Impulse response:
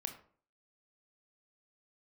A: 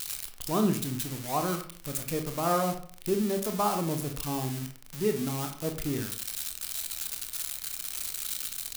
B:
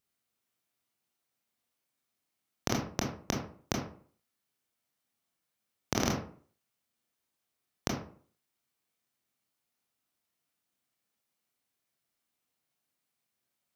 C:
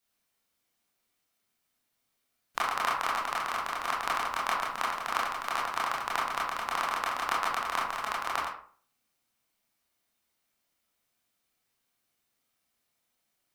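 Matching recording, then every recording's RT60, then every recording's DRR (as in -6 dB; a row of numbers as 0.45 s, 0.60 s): A; 0.50 s, 0.50 s, 0.50 s; 5.0 dB, -1.0 dB, -5.0 dB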